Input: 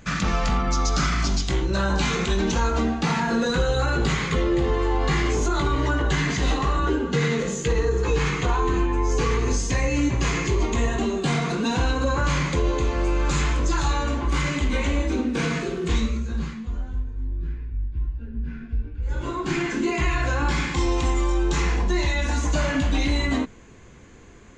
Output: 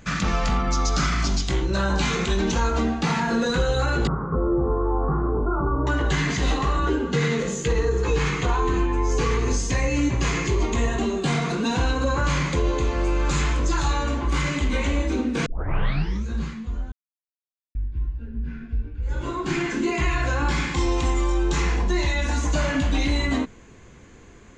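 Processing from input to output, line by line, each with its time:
4.07–5.87 Chebyshev low-pass 1400 Hz, order 6
15.46 tape start 0.80 s
16.92–17.75 mute

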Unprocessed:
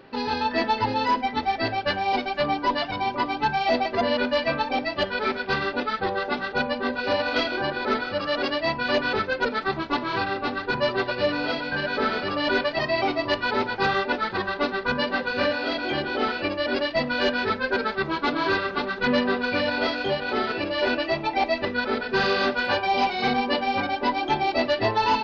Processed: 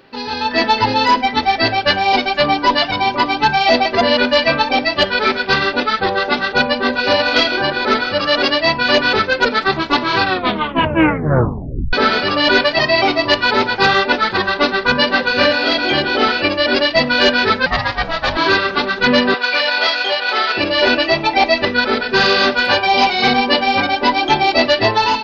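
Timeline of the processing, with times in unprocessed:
10.25 tape stop 1.68 s
17.66–18.37 ring modulator 340 Hz
19.34–20.57 HPF 680 Hz
whole clip: high shelf 2400 Hz +8 dB; AGC gain up to 11 dB

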